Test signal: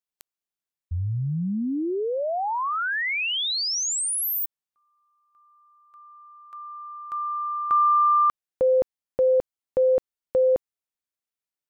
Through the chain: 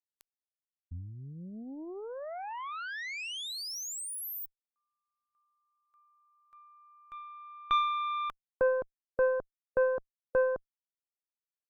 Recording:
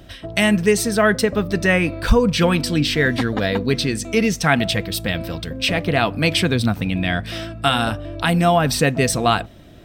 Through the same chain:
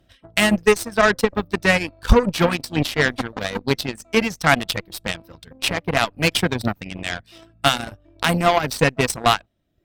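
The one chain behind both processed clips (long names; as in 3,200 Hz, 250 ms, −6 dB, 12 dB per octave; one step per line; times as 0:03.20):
reverb reduction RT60 1.1 s
harmonic generator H 3 −30 dB, 4 −23 dB, 7 −19 dB, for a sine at −4 dBFS
level +2 dB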